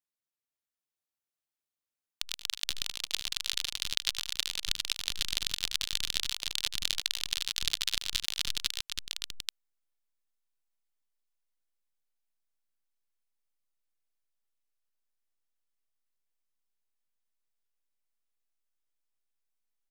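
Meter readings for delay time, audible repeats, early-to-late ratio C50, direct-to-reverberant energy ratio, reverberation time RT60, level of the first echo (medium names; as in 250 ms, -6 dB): 77 ms, 3, no reverb, no reverb, no reverb, -14.0 dB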